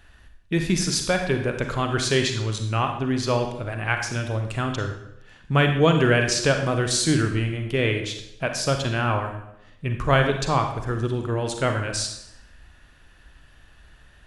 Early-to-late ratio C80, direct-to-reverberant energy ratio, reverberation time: 9.0 dB, 4.5 dB, 0.80 s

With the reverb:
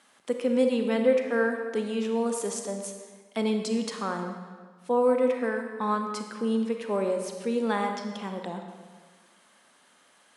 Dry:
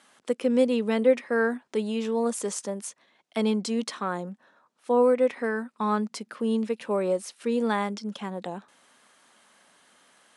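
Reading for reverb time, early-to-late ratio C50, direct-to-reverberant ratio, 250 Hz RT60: 1.5 s, 5.0 dB, 4.5 dB, 1.5 s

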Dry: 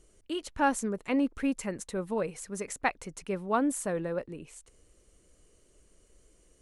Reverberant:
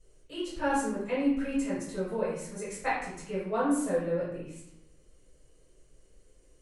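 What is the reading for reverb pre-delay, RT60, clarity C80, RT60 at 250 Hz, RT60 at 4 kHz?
4 ms, 0.75 s, 5.0 dB, 1.0 s, 0.60 s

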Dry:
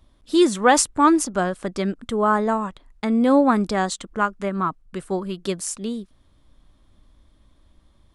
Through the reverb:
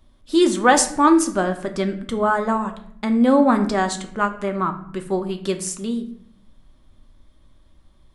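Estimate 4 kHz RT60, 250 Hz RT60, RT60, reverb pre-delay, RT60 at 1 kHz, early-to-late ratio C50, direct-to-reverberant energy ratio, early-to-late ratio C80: 0.45 s, 1.1 s, 0.65 s, 3 ms, 0.60 s, 11.5 dB, 5.5 dB, 14.5 dB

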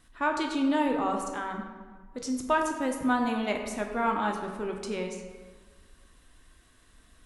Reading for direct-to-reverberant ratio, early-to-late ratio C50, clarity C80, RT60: 2.5 dB, 5.0 dB, 7.0 dB, 1.5 s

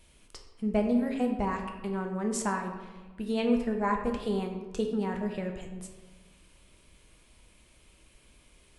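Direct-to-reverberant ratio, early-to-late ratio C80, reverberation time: 2.5 dB, 8.0 dB, 1.3 s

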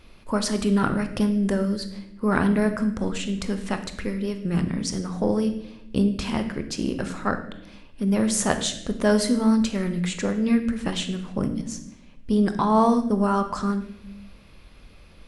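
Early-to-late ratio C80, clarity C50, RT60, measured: 12.5 dB, 10.0 dB, 0.85 s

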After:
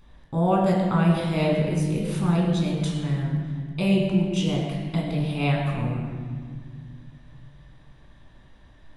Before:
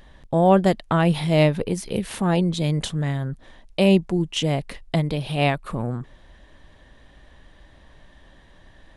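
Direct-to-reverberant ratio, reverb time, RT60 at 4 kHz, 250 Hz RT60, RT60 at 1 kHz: −2.0 dB, 1.9 s, 1.3 s, 3.3 s, 1.8 s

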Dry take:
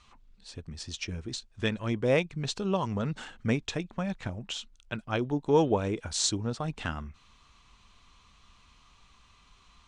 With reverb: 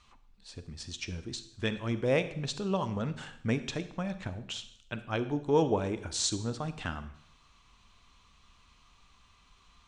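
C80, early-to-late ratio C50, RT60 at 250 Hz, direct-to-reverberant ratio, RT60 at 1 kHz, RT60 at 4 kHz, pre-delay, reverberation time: 15.5 dB, 13.0 dB, 0.70 s, 11.5 dB, 0.70 s, 0.65 s, 35 ms, 0.70 s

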